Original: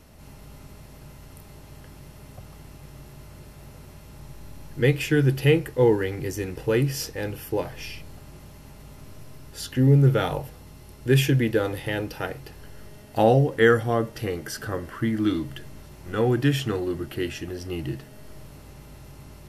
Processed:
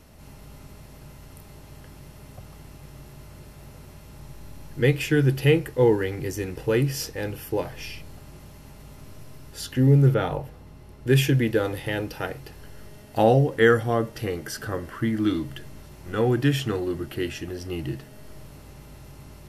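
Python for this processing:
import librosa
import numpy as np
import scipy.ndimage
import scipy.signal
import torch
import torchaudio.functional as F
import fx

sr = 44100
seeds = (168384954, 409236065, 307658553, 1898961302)

y = fx.high_shelf(x, sr, hz=3300.0, db=-10.5, at=(10.14, 11.07))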